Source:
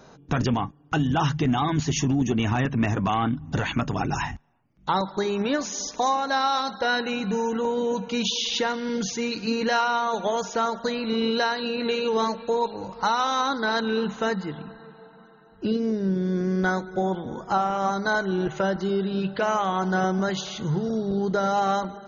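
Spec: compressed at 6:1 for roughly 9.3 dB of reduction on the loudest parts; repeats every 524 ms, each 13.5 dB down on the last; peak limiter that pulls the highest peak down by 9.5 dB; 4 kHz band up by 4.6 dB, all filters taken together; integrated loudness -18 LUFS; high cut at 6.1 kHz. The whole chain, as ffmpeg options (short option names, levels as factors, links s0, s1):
-af "lowpass=6100,equalizer=f=4000:t=o:g=6,acompressor=threshold=0.0355:ratio=6,alimiter=level_in=1.12:limit=0.0631:level=0:latency=1,volume=0.891,aecho=1:1:524|1048:0.211|0.0444,volume=5.96"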